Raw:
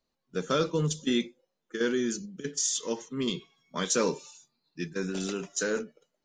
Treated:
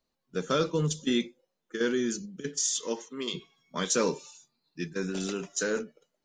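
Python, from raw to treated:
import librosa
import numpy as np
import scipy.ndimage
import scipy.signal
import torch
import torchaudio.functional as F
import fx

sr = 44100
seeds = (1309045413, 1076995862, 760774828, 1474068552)

y = fx.highpass(x, sr, hz=fx.line((2.83, 160.0), (3.33, 470.0)), slope=12, at=(2.83, 3.33), fade=0.02)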